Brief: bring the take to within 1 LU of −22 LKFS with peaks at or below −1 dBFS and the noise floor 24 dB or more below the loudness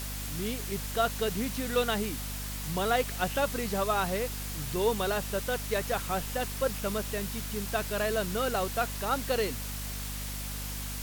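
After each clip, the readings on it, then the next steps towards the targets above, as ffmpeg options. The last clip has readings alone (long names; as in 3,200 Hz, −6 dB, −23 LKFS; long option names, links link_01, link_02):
mains hum 50 Hz; hum harmonics up to 250 Hz; level of the hum −36 dBFS; background noise floor −37 dBFS; target noise floor −55 dBFS; integrated loudness −31.0 LKFS; sample peak −14.5 dBFS; target loudness −22.0 LKFS
→ -af "bandreject=frequency=50:width_type=h:width=6,bandreject=frequency=100:width_type=h:width=6,bandreject=frequency=150:width_type=h:width=6,bandreject=frequency=200:width_type=h:width=6,bandreject=frequency=250:width_type=h:width=6"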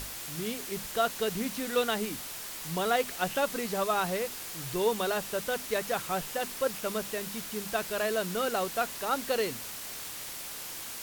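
mains hum none found; background noise floor −41 dBFS; target noise floor −56 dBFS
→ -af "afftdn=noise_reduction=15:noise_floor=-41"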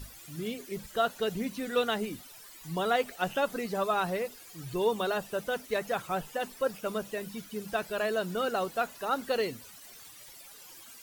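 background noise floor −51 dBFS; target noise floor −56 dBFS
→ -af "afftdn=noise_reduction=6:noise_floor=-51"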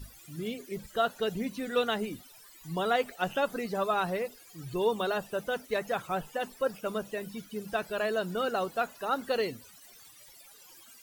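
background noise floor −54 dBFS; target noise floor −56 dBFS
→ -af "afftdn=noise_reduction=6:noise_floor=-54"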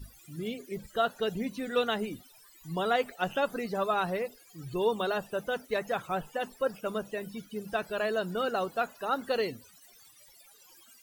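background noise floor −58 dBFS; integrated loudness −32.0 LKFS; sample peak −15.5 dBFS; target loudness −22.0 LKFS
→ -af "volume=10dB"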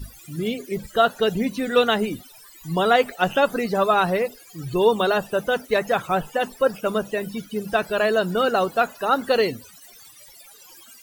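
integrated loudness −22.0 LKFS; sample peak −5.5 dBFS; background noise floor −48 dBFS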